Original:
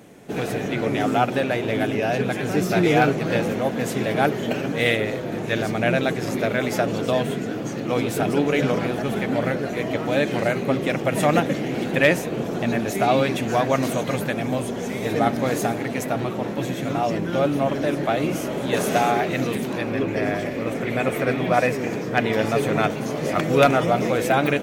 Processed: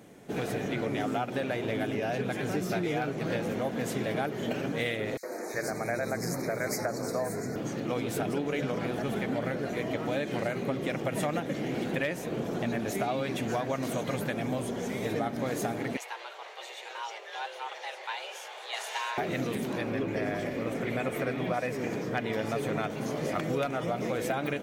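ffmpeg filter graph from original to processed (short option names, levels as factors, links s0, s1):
-filter_complex "[0:a]asettb=1/sr,asplit=3[s0][s1][s2];[s0]atrim=end=5.174[s3];[s1]atrim=start=5.17:end=7.56,asetpts=PTS-STARTPTS,afade=t=in:d=0.004:c=qsin,afade=t=out:st=2.386:d=0.004:c=qsin,asuperstop=centerf=3100:order=8:qfactor=1.7,bass=f=250:g=-3,treble=f=4000:g=8,acrossover=split=290|2900[s4][s5][s6];[s5]adelay=60[s7];[s4]adelay=370[s8];[s8][s7][s6]amix=inputs=3:normalize=0,atrim=end_sample=105399[s9];[s2]atrim=start=7.556[s10];[s3][s9]acrossfade=d=0.004:c1=hsin:c2=qsin[s11];[s11][s10]acrossfade=d=0.004:c1=qsin:c2=hsin,asettb=1/sr,asplit=3[s12][s13][s14];[s12]atrim=end=15.974[s15];[s13]atrim=start=15.97:end=19.18,asetpts=PTS-STARTPTS,afade=t=in:d=0.004:c=qsin,afade=t=out:st=3.206:d=0.004:c=qsin,bandpass=f=3100:t=q:w=0.69,afreqshift=230[s16];[s14]atrim=start=19.176[s17];[s15][s16]acrossfade=d=0.004:c1=hsin:c2=qsin[s18];[s18][s17]acrossfade=d=0.004:c1=qsin:c2=hsin,bandreject=f=2600:w=29,acompressor=threshold=0.0891:ratio=10,volume=0.531"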